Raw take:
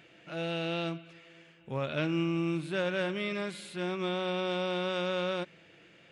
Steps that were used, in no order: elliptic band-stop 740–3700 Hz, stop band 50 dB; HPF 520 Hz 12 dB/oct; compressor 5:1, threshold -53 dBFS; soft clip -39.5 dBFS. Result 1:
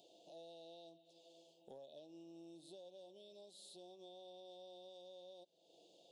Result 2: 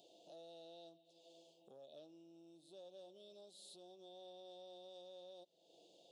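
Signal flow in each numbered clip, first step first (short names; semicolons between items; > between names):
HPF > compressor > elliptic band-stop > soft clip; elliptic band-stop > compressor > soft clip > HPF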